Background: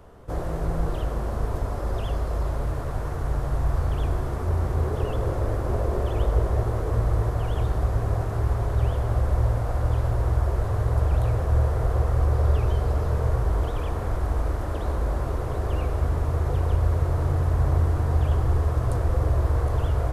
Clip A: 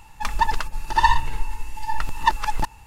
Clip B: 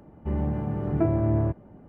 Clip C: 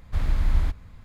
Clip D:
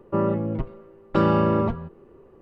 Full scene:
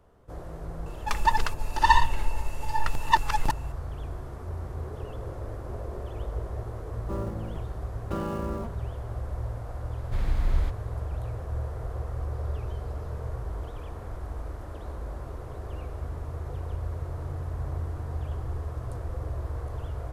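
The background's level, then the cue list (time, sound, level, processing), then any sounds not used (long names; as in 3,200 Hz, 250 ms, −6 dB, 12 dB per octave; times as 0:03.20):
background −11 dB
0:00.86: mix in A −2 dB
0:06.96: mix in D −12.5 dB + gap after every zero crossing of 0.065 ms
0:09.99: mix in C −3.5 dB
not used: B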